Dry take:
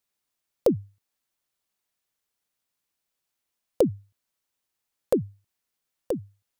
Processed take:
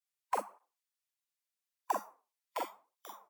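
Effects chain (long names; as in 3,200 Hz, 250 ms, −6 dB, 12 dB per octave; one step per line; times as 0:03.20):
peak hold with a decay on every bin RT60 0.62 s
meter weighting curve A
on a send: single-tap delay 85 ms −4 dB
on the sum: downward compressor 1.5 to 1, threshold −41 dBFS, peak gain reduction 8.5 dB
high-shelf EQ 8,900 Hz +6 dB
in parallel at −2 dB: brickwall limiter −27 dBFS, peak gain reduction 10 dB
on the sum: wrong playback speed 7.5 ips tape played at 15 ips
noise reduction from a noise print of the clip's start 13 dB
through-zero flanger with one copy inverted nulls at 0.84 Hz, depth 8 ms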